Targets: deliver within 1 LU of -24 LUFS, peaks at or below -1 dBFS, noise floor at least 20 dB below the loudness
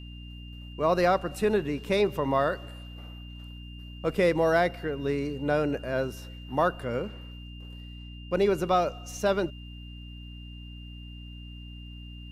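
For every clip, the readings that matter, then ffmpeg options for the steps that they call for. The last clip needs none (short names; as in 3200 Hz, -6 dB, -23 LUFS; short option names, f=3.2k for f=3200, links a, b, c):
hum 60 Hz; harmonics up to 300 Hz; hum level -40 dBFS; steady tone 2800 Hz; tone level -49 dBFS; loudness -27.5 LUFS; peak -11.0 dBFS; loudness target -24.0 LUFS
-> -af "bandreject=f=60:t=h:w=4,bandreject=f=120:t=h:w=4,bandreject=f=180:t=h:w=4,bandreject=f=240:t=h:w=4,bandreject=f=300:t=h:w=4"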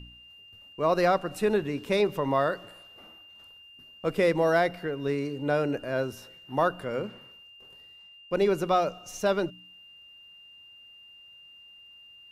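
hum none; steady tone 2800 Hz; tone level -49 dBFS
-> -af "bandreject=f=2.8k:w=30"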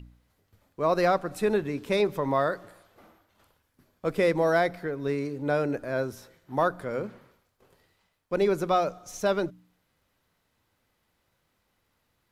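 steady tone none; loudness -27.5 LUFS; peak -11.5 dBFS; loudness target -24.0 LUFS
-> -af "volume=3.5dB"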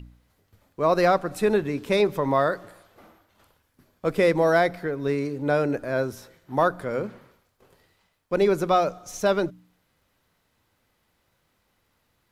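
loudness -24.0 LUFS; peak -8.0 dBFS; noise floor -71 dBFS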